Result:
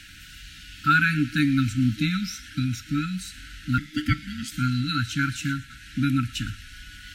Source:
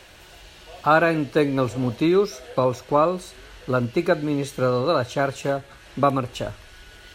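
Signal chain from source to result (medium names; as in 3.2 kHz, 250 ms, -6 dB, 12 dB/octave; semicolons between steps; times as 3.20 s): feedback echo behind a high-pass 116 ms, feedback 53%, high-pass 1.8 kHz, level -17.5 dB; 3.78–4.52 s: ring modulator 650 Hz; FFT band-reject 310–1300 Hz; trim +3 dB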